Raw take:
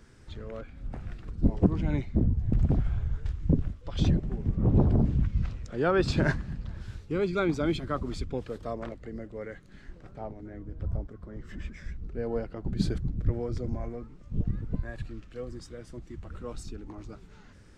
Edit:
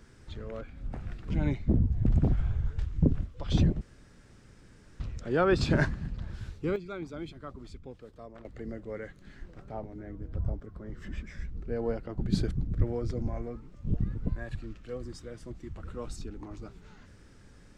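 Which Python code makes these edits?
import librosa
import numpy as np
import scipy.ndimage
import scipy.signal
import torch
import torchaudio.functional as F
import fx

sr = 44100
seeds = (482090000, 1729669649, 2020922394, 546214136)

y = fx.edit(x, sr, fx.cut(start_s=1.3, length_s=0.47),
    fx.room_tone_fill(start_s=4.28, length_s=1.19),
    fx.fade_down_up(start_s=7.03, length_s=2.09, db=-12.0, fade_s=0.2, curve='log'), tone=tone)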